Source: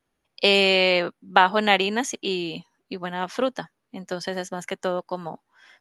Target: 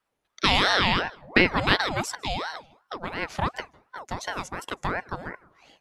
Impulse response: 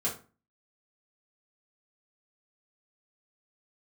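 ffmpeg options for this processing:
-filter_complex "[0:a]asplit=2[link_01][link_02];[1:a]atrim=start_sample=2205,adelay=149[link_03];[link_02][link_03]afir=irnorm=-1:irlink=0,volume=-28.5dB[link_04];[link_01][link_04]amix=inputs=2:normalize=0,aeval=exprs='val(0)*sin(2*PI*800*n/s+800*0.6/2.8*sin(2*PI*2.8*n/s))':channel_layout=same"

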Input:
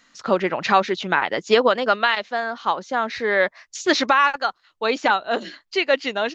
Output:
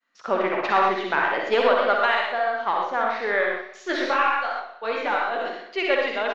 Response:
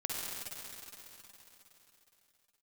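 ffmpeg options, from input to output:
-filter_complex "[0:a]agate=range=-33dB:threshold=-49dB:ratio=3:detection=peak,aeval=exprs='(tanh(2.24*val(0)+0.4)-tanh(0.4))/2.24':channel_layout=same,bass=frequency=250:gain=-14,treble=frequency=4000:gain=-15,aecho=1:1:62|124|186|248|310|372|434:0.335|0.194|0.113|0.0654|0.0379|0.022|0.0128[link_01];[1:a]atrim=start_sample=2205,atrim=end_sample=6174[link_02];[link_01][link_02]afir=irnorm=-1:irlink=0,asplit=3[link_03][link_04][link_05];[link_03]afade=type=out:start_time=3.4:duration=0.02[link_06];[link_04]flanger=delay=19:depth=5.8:speed=2.6,afade=type=in:start_time=3.4:duration=0.02,afade=type=out:start_time=5.45:duration=0.02[link_07];[link_05]afade=type=in:start_time=5.45:duration=0.02[link_08];[link_06][link_07][link_08]amix=inputs=3:normalize=0"

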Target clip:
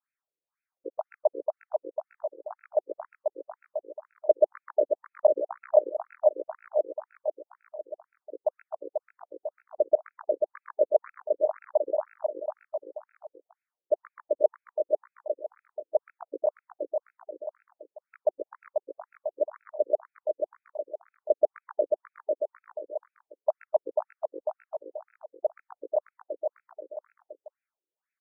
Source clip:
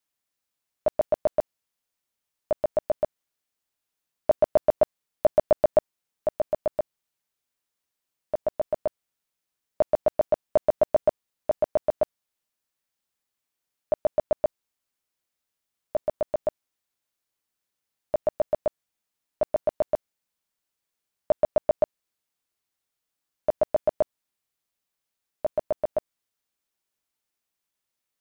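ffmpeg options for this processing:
ffmpeg -i in.wav -filter_complex "[0:a]asettb=1/sr,asplit=3[link_01][link_02][link_03];[link_01]atrim=end=14.414[link_04];[link_02]atrim=start=14.41:end=16.4,asetpts=PTS-STARTPTS,afade=type=in:duration=0.004:curve=qsin,afade=type=out:start_time=1.986:duration=0.004:curve=qsin,equalizer=frequency=130:width=0.54:gain=14[link_05];[link_03]atrim=start=16.396[link_06];[link_04][link_05]acrossfade=duration=0.004:curve1=hsin:curve2=qsin[link_07];[link_07][link_06]acrossfade=duration=0.004:curve1=qsin:curve2=hsin,aecho=1:1:490|857.5|1133|1340|1495:0.631|0.398|0.251|0.158|0.1,afftfilt=real='re*between(b*sr/1024,370*pow(1900/370,0.5+0.5*sin(2*PI*2*pts/sr))/1.41,370*pow(1900/370,0.5+0.5*sin(2*PI*2*pts/sr))*1.41)':imag='im*between(b*sr/1024,370*pow(1900/370,0.5+0.5*sin(2*PI*2*pts/sr))/1.41,370*pow(1900/370,0.5+0.5*sin(2*PI*2*pts/sr))*1.41)':win_size=1024:overlap=0.75,volume=1dB" out.wav

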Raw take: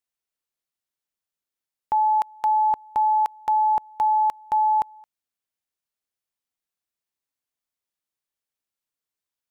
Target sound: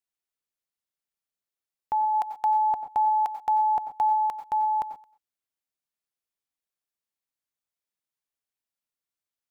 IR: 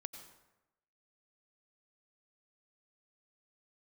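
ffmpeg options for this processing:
-filter_complex "[0:a]asplit=3[link_01][link_02][link_03];[link_01]afade=type=out:start_time=2.13:duration=0.02[link_04];[link_02]equalizer=frequency=750:width_type=o:width=0.2:gain=9.5,afade=type=in:start_time=2.13:duration=0.02,afade=type=out:start_time=4.15:duration=0.02[link_05];[link_03]afade=type=in:start_time=4.15:duration=0.02[link_06];[link_04][link_05][link_06]amix=inputs=3:normalize=0[link_07];[1:a]atrim=start_sample=2205,atrim=end_sample=6174[link_08];[link_07][link_08]afir=irnorm=-1:irlink=0"

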